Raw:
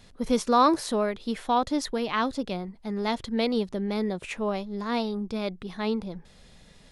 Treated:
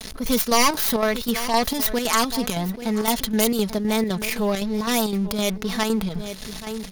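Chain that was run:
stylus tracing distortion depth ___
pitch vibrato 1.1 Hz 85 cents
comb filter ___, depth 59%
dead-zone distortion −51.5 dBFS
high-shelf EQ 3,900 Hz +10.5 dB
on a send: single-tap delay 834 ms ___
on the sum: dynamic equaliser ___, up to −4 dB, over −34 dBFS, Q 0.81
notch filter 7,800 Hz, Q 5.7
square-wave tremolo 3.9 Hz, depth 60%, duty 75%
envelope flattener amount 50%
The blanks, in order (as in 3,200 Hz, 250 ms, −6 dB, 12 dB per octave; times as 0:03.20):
0.44 ms, 4.6 ms, −21.5 dB, 360 Hz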